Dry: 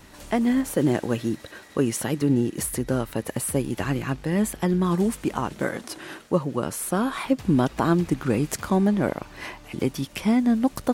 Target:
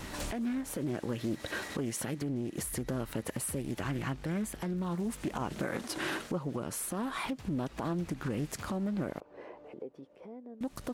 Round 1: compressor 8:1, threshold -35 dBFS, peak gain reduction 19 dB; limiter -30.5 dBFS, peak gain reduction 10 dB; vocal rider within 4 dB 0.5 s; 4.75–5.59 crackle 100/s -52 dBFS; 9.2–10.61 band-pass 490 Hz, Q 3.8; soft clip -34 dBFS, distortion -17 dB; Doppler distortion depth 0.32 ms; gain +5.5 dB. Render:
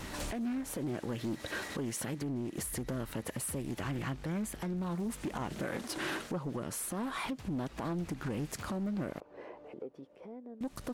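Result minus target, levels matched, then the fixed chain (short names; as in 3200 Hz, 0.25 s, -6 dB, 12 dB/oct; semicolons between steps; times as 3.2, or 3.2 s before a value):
soft clip: distortion +18 dB
compressor 8:1, threshold -35 dBFS, peak gain reduction 19 dB; limiter -30.5 dBFS, peak gain reduction 10 dB; vocal rider within 4 dB 0.5 s; 4.75–5.59 crackle 100/s -52 dBFS; 9.2–10.61 band-pass 490 Hz, Q 3.8; soft clip -23 dBFS, distortion -35 dB; Doppler distortion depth 0.32 ms; gain +5.5 dB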